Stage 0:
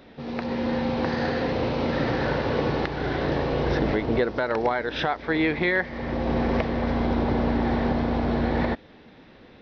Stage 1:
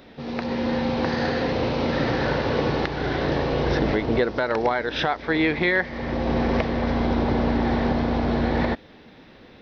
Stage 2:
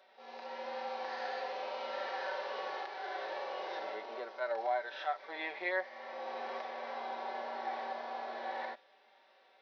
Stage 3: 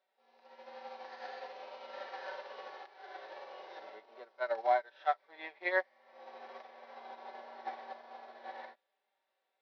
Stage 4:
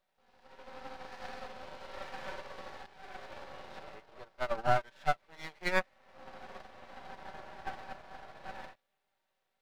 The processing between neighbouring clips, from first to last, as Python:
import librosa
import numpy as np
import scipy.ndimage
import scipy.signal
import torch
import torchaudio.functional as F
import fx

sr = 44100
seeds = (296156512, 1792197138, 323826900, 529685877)

y1 = fx.high_shelf(x, sr, hz=4500.0, db=5.5)
y1 = y1 * librosa.db_to_amplitude(1.5)
y2 = fx.hpss(y1, sr, part='percussive', gain_db=-17)
y2 = fx.ladder_highpass(y2, sr, hz=540.0, resonance_pct=35)
y2 = y2 + 0.65 * np.pad(y2, (int(5.2 * sr / 1000.0), 0))[:len(y2)]
y2 = y2 * librosa.db_to_amplitude(-4.0)
y3 = fx.upward_expand(y2, sr, threshold_db=-47.0, expansion=2.5)
y3 = y3 * librosa.db_to_amplitude(6.5)
y4 = np.maximum(y3, 0.0)
y4 = y4 * librosa.db_to_amplitude(5.0)